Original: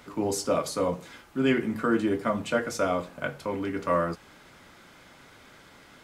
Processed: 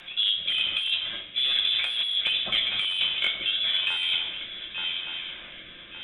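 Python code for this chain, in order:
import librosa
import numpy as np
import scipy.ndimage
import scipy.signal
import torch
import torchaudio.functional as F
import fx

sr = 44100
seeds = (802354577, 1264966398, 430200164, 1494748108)

y = fx.hpss(x, sr, part='harmonic', gain_db=3)
y = fx.env_lowpass_down(y, sr, base_hz=1200.0, full_db=-20.5)
y = fx.low_shelf(y, sr, hz=250.0, db=-5.0)
y = 10.0 ** (-19.0 / 20.0) * (np.abs((y / 10.0 ** (-19.0 / 20.0) + 3.0) % 4.0 - 2.0) - 1.0)
y = fx.freq_invert(y, sr, carrier_hz=3700)
y = fx.room_shoebox(y, sr, seeds[0], volume_m3=1300.0, walls='mixed', distance_m=0.93)
y = fx.rotary(y, sr, hz=0.9)
y = fx.echo_swing(y, sr, ms=1168, ratio=3, feedback_pct=32, wet_db=-13.0)
y = 10.0 ** (-15.5 / 20.0) * np.tanh(y / 10.0 ** (-15.5 / 20.0))
y = fx.over_compress(y, sr, threshold_db=-31.0, ratio=-1.0)
y = F.gain(torch.from_numpy(y), 6.0).numpy()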